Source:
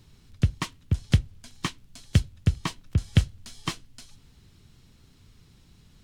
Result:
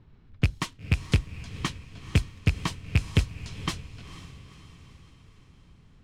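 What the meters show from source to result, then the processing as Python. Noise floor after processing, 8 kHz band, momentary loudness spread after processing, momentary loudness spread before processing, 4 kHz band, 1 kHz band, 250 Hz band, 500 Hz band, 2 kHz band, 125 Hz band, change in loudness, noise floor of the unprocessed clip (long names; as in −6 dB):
−56 dBFS, −1.0 dB, 18 LU, 11 LU, +0.5 dB, +0.5 dB, −1.0 dB, +2.5 dB, +4.0 dB, −1.5 dB, −1.0 dB, −57 dBFS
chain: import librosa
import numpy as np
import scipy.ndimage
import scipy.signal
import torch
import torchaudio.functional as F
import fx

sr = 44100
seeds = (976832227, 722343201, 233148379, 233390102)

y = fx.rattle_buzz(x, sr, strikes_db=-21.0, level_db=-12.0)
y = np.clip(y, -10.0 ** (-14.0 / 20.0), 10.0 ** (-14.0 / 20.0))
y = fx.env_lowpass(y, sr, base_hz=1600.0, full_db=-26.0)
y = fx.echo_diffused(y, sr, ms=482, feedback_pct=51, wet_db=-14.0)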